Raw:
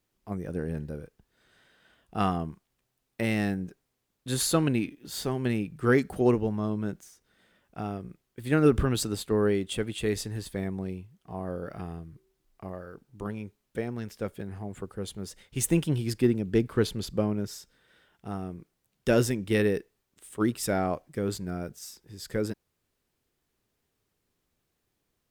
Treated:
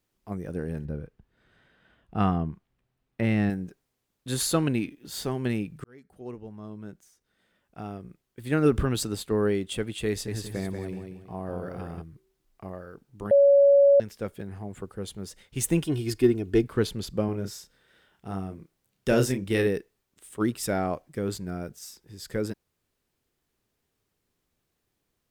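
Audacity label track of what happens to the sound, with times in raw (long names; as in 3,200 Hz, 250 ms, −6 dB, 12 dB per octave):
0.850000	3.500000	bass and treble bass +6 dB, treble −12 dB
5.840000	8.840000	fade in
10.090000	12.020000	repeating echo 186 ms, feedback 30%, level −5.5 dB
13.310000	14.000000	beep over 562 Hz −13.5 dBFS
15.830000	16.640000	comb filter 2.8 ms
17.250000	19.670000	double-tracking delay 31 ms −6.5 dB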